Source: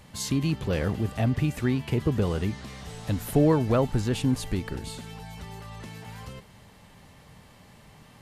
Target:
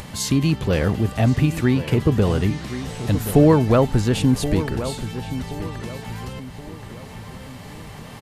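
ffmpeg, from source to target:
-filter_complex "[0:a]asplit=2[s0][s1];[s1]adelay=1075,lowpass=f=2700:p=1,volume=0.266,asplit=2[s2][s3];[s3]adelay=1075,lowpass=f=2700:p=1,volume=0.35,asplit=2[s4][s5];[s5]adelay=1075,lowpass=f=2700:p=1,volume=0.35,asplit=2[s6][s7];[s7]adelay=1075,lowpass=f=2700:p=1,volume=0.35[s8];[s0][s2][s4][s6][s8]amix=inputs=5:normalize=0,acompressor=mode=upward:threshold=0.0158:ratio=2.5,volume=2.24"

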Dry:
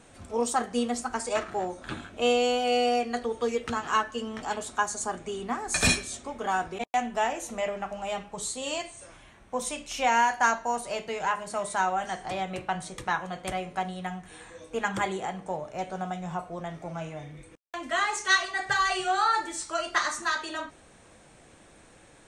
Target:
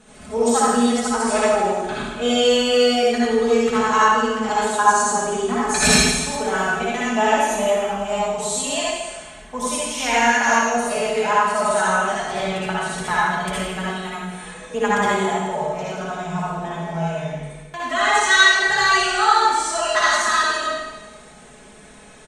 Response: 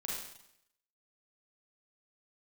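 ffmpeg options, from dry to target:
-filter_complex "[0:a]aecho=1:1:4.7:0.85[s0];[1:a]atrim=start_sample=2205,asetrate=27783,aresample=44100[s1];[s0][s1]afir=irnorm=-1:irlink=0,volume=1.41"

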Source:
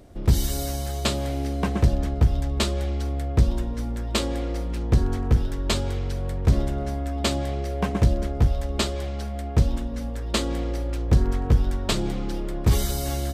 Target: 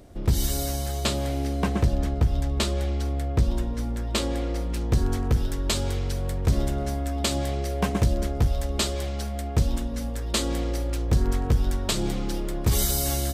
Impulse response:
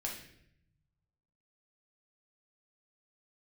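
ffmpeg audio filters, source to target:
-af "asetnsamples=n=441:p=0,asendcmd='4.74 highshelf g 9.5',highshelf=f=4800:g=2.5,alimiter=limit=0.237:level=0:latency=1:release=111"

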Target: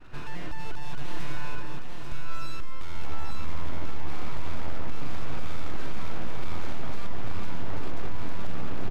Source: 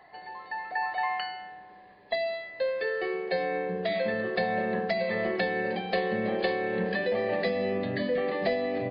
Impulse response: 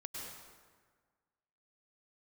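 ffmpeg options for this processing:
-filter_complex "[0:a]lowpass=2800,bandreject=f=185.8:t=h:w=4,bandreject=f=371.6:t=h:w=4,bandreject=f=557.4:t=h:w=4,bandreject=f=743.2:t=h:w=4,bandreject=f=929:t=h:w=4,bandreject=f=1114.8:t=h:w=4,bandreject=f=1300.6:t=h:w=4,bandreject=f=1486.4:t=h:w=4,bandreject=f=1672.2:t=h:w=4,bandreject=f=1858:t=h:w=4,bandreject=f=2043.8:t=h:w=4,bandreject=f=2229.6:t=h:w=4,bandreject=f=2415.4:t=h:w=4,bandreject=f=2601.2:t=h:w=4,bandreject=f=2787:t=h:w=4,bandreject=f=2972.8:t=h:w=4,bandreject=f=3158.6:t=h:w=4,bandreject=f=3344.4:t=h:w=4,bandreject=f=3530.2:t=h:w=4,bandreject=f=3716:t=h:w=4,bandreject=f=3901.8:t=h:w=4,bandreject=f=4087.6:t=h:w=4,bandreject=f=4273.4:t=h:w=4,bandreject=f=4459.2:t=h:w=4,bandreject=f=4645:t=h:w=4,bandreject=f=4830.8:t=h:w=4,bandreject=f=5016.6:t=h:w=4,bandreject=f=5202.4:t=h:w=4,bandreject=f=5388.2:t=h:w=4,bandreject=f=5574:t=h:w=4,bandreject=f=5759.8:t=h:w=4,bandreject=f=5945.6:t=h:w=4,bandreject=f=6131.4:t=h:w=4,bandreject=f=6317.2:t=h:w=4,bandreject=f=6503:t=h:w=4,bandreject=f=6688.8:t=h:w=4,bandreject=f=6874.6:t=h:w=4,aeval=exprs='abs(val(0))':c=same,tiltshelf=f=970:g=4.5,acompressor=threshold=0.0251:ratio=3,aeval=exprs='(tanh(70.8*val(0)+0.5)-tanh(0.5))/70.8':c=same,agate=range=0.0224:threshold=0.00355:ratio=3:detection=peak,aecho=1:1:841:0.631,asplit=2[s0][s1];[1:a]atrim=start_sample=2205,asetrate=29106,aresample=44100,lowshelf=f=250:g=10.5[s2];[s1][s2]afir=irnorm=-1:irlink=0,volume=0.316[s3];[s0][s3]amix=inputs=2:normalize=0,volume=6.31"

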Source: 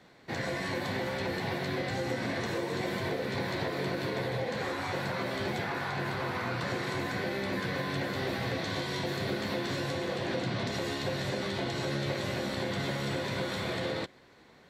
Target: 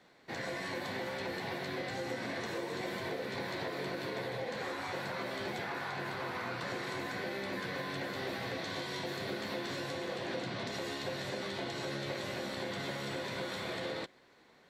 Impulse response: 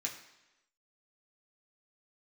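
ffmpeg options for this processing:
-af "equalizer=f=76:w=0.48:g=-8,volume=0.631"

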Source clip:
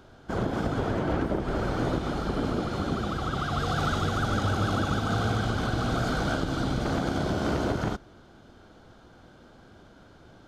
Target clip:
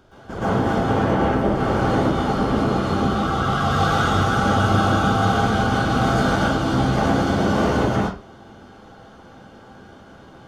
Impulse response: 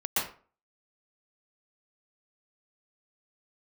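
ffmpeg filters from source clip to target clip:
-filter_complex "[0:a]bandreject=f=4000:w=17[s0];[1:a]atrim=start_sample=2205,afade=t=out:st=0.3:d=0.01,atrim=end_sample=13671[s1];[s0][s1]afir=irnorm=-1:irlink=0"

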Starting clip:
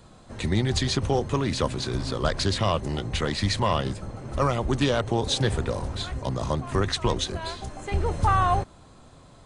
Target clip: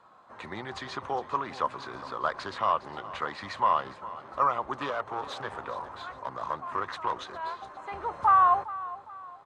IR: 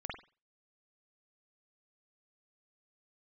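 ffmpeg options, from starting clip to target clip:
-filter_complex "[0:a]asettb=1/sr,asplit=3[s0][s1][s2];[s0]atrim=end=4.904[s3];[s1]atrim=start=4.9:end=7.12,asetpts=PTS-STARTPTS,afade=t=in:d=0.004:c=qsin,afade=t=out:st=2.216:d=0.004:c=qsin,aeval=exprs='clip(val(0),-1,0.0562)':c=same[s4];[s2]atrim=start=7.116[s5];[s3][s4]acrossfade=d=0.004:c1=hsin:c2=qsin[s6];[s6][s5]acrossfade=d=0.004:c1=qsin:c2=hsin,bandpass=f=1100:t=q:w=2.6:csg=0,aecho=1:1:409|818|1227:0.15|0.0584|0.0228,volume=1.68"

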